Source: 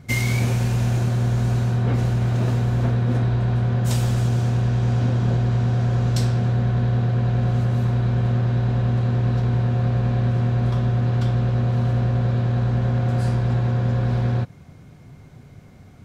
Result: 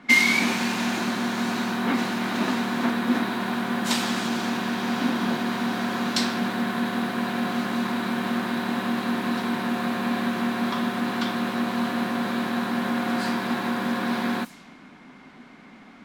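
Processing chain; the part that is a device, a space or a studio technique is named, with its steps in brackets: steep high-pass 180 Hz 36 dB/octave; graphic EQ 125/250/500/1000/2000/4000 Hz -10/+9/-7/+8/+7/+8 dB; cassette deck with a dynamic noise filter (white noise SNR 23 dB; level-controlled noise filter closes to 1.8 kHz, open at -24 dBFS)

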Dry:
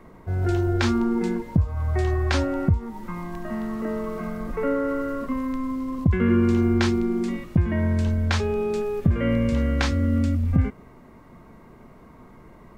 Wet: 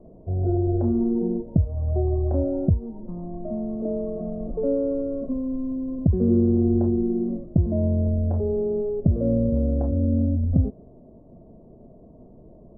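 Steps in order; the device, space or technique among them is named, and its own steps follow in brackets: under water (low-pass 550 Hz 24 dB/octave; peaking EQ 650 Hz +11.5 dB 0.41 oct)

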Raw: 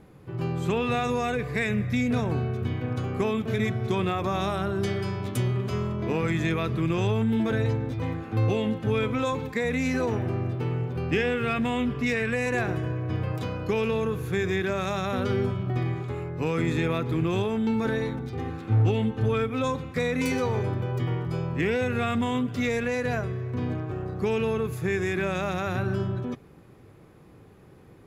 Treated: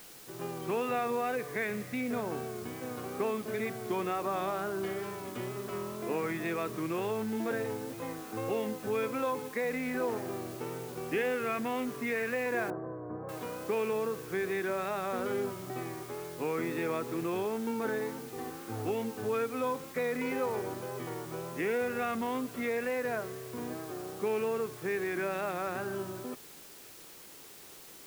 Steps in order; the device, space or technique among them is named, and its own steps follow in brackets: wax cylinder (band-pass 310–2100 Hz; wow and flutter; white noise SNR 17 dB); 12.70–13.29 s: inverse Chebyshev low-pass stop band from 3.2 kHz, stop band 50 dB; trim -3.5 dB

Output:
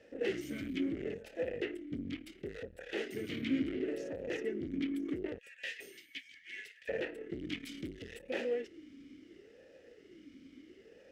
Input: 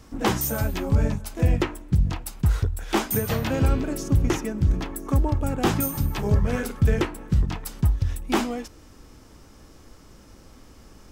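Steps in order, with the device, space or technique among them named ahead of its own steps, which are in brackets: 5.38–6.89 s: elliptic high-pass 1.8 kHz, stop band 50 dB; 7.39–8.22 s: treble shelf 2.4 kHz +12 dB; talk box (valve stage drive 29 dB, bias 0.6; talking filter e-i 0.72 Hz); trim +9 dB

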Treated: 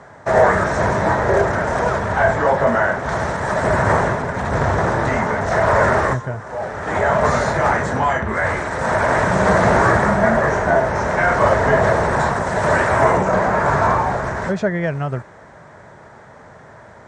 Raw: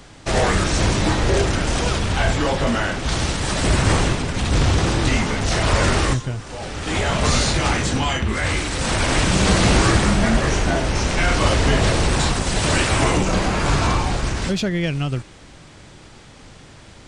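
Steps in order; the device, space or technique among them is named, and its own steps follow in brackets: car door speaker (cabinet simulation 94–8200 Hz, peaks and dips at 300 Hz -7 dB, 430 Hz +4 dB, 630 Hz +10 dB, 940 Hz +7 dB, 4.7 kHz -5 dB); resonant high shelf 2.2 kHz -8 dB, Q 3

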